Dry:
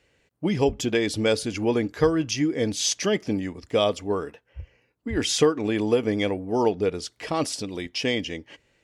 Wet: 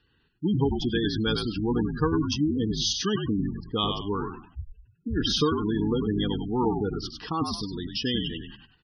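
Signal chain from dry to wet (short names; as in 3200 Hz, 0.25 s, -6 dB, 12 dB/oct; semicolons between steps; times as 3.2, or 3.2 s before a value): fixed phaser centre 2200 Hz, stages 6; frequency-shifting echo 98 ms, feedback 32%, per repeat -59 Hz, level -5.5 dB; spectral gate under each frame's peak -20 dB strong; gain +1.5 dB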